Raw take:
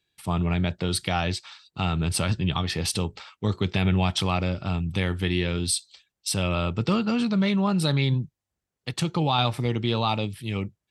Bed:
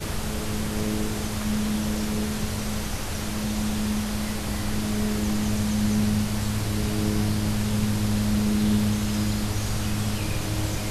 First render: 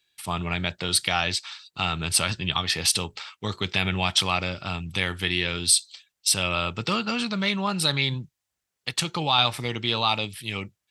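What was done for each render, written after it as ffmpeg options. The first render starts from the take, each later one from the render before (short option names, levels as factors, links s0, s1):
-af "tiltshelf=f=770:g=-7"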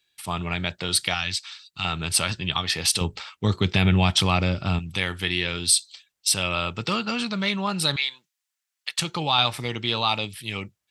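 -filter_complex "[0:a]asettb=1/sr,asplit=3[s0][s1][s2];[s0]atrim=end=1.144[s3];[s1]atrim=start=1.14:end=1.85,asetpts=PTS-STARTPTS,afade=t=in:d=0.004:c=qsin,afade=t=out:st=0.706:d=0.004:c=qsin,equalizer=f=510:w=0.73:g=-13.5[s4];[s2]atrim=start=1.846[s5];[s3][s4]acrossfade=d=0.004:c1=hsin:c2=qsin[s6];[s6][s5]acrossfade=d=0.004:c1=qsin:c2=hsin,asettb=1/sr,asplit=3[s7][s8][s9];[s7]atrim=end=3.014[s10];[s8]atrim=start=3.01:end=4.79,asetpts=PTS-STARTPTS,afade=t=in:d=0.004:c=qsin,afade=t=out:st=1.776:d=0.004:c=qsin,lowshelf=f=430:g=10.5[s11];[s9]atrim=start=4.786[s12];[s10][s11]acrossfade=d=0.004:c1=hsin:c2=qsin[s13];[s13][s12]acrossfade=d=0.004:c1=qsin:c2=hsin,asettb=1/sr,asplit=3[s14][s15][s16];[s14]atrim=end=7.964[s17];[s15]atrim=start=7.96:end=8.99,asetpts=PTS-STARTPTS,afade=t=in:d=0.004:c=qsin,afade=t=out:st=1.026:d=0.004:c=qsin,highpass=1300[s18];[s16]atrim=start=8.986[s19];[s17][s18]acrossfade=d=0.004:c1=hsin:c2=qsin[s20];[s20][s19]acrossfade=d=0.004:c1=qsin:c2=hsin"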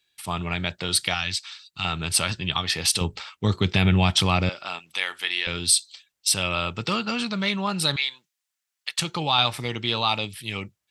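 -filter_complex "[0:a]asettb=1/sr,asplit=3[s0][s1][s2];[s0]atrim=end=4.494[s3];[s1]atrim=start=4.49:end=5.47,asetpts=PTS-STARTPTS,afade=t=in:d=0.004:c=qsin,afade=t=out:st=0.976:d=0.004:c=qsin,highpass=710[s4];[s2]atrim=start=5.466[s5];[s3][s4]acrossfade=d=0.004:c1=hsin:c2=qsin[s6];[s6][s5]acrossfade=d=0.004:c1=qsin:c2=hsin"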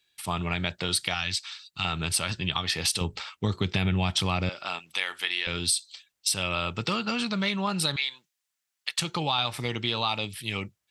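-af "acompressor=threshold=0.0631:ratio=3"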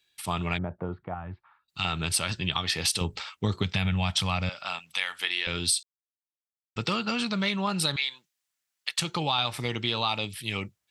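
-filter_complex "[0:a]asplit=3[s0][s1][s2];[s0]afade=t=out:st=0.57:d=0.02[s3];[s1]lowpass=f=1100:w=0.5412,lowpass=f=1100:w=1.3066,afade=t=in:st=0.57:d=0.02,afade=t=out:st=1.68:d=0.02[s4];[s2]afade=t=in:st=1.68:d=0.02[s5];[s3][s4][s5]amix=inputs=3:normalize=0,asettb=1/sr,asplit=3[s6][s7][s8];[s6]atrim=end=3.634[s9];[s7]atrim=start=3.63:end=5.2,asetpts=PTS-STARTPTS,afade=t=in:d=0.004:c=qsin,afade=t=out:st=1.566:d=0.004:c=qsin,equalizer=f=350:w=2.1:g=-14[s10];[s8]atrim=start=5.196[s11];[s9][s10]acrossfade=d=0.004:c1=hsin:c2=qsin[s12];[s12][s11]acrossfade=d=0.004:c1=qsin:c2=hsin,asplit=3[s13][s14][s15];[s13]atrim=end=5.83,asetpts=PTS-STARTPTS,afade=t=out:st=5.826:d=0.004:c=hsin[s16];[s14]atrim=start=5.83:end=6.76,asetpts=PTS-STARTPTS,volume=0[s17];[s15]atrim=start=6.76,asetpts=PTS-STARTPTS,afade=t=in:d=0.004:c=hsin[s18];[s16][s17][s18]concat=n=3:v=0:a=1"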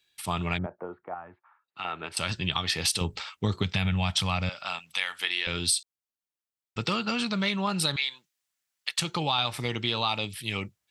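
-filter_complex "[0:a]asettb=1/sr,asplit=3[s0][s1][s2];[s0]atrim=end=0.664[s3];[s1]atrim=start=0.66:end=2.17,asetpts=PTS-STARTPTS,afade=t=in:d=0.004:c=qsin,afade=t=out:st=1.506:d=0.004:c=qsin,acrossover=split=290 2400:gain=0.0794 1 0.0891[s4][s5][s6];[s4][s5][s6]amix=inputs=3:normalize=0[s7];[s2]atrim=start=2.166[s8];[s3][s7]acrossfade=d=0.004:c1=hsin:c2=qsin[s9];[s9][s8]acrossfade=d=0.004:c1=qsin:c2=hsin"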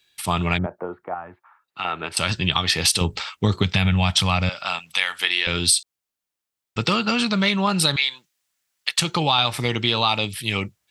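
-af "volume=2.37"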